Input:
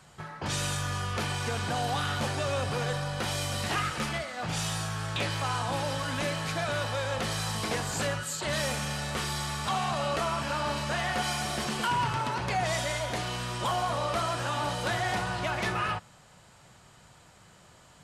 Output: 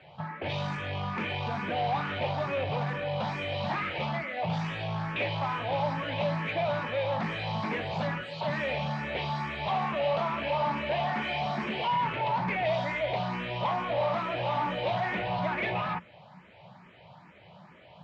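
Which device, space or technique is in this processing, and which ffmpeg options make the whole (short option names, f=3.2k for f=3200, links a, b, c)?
barber-pole phaser into a guitar amplifier: -filter_complex "[0:a]asplit=2[a][b];[b]afreqshift=2.3[c];[a][c]amix=inputs=2:normalize=1,asoftclip=type=tanh:threshold=-32dB,highpass=95,equalizer=f=180:t=q:w=4:g=8,equalizer=f=610:t=q:w=4:g=7,equalizer=f=880:t=q:w=4:g=6,equalizer=f=1.4k:t=q:w=4:g=-5,equalizer=f=2.3k:t=q:w=4:g=6,lowpass=f=3.5k:w=0.5412,lowpass=f=3.5k:w=1.3066,volume=4dB"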